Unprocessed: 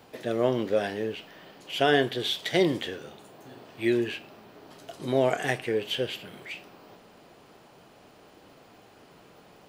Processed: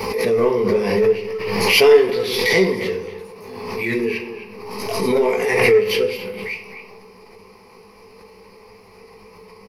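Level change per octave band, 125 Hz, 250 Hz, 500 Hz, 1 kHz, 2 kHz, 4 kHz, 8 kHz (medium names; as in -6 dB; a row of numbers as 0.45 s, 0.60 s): +6.0 dB, +6.0 dB, +12.0 dB, +6.5 dB, +11.0 dB, +8.0 dB, +13.5 dB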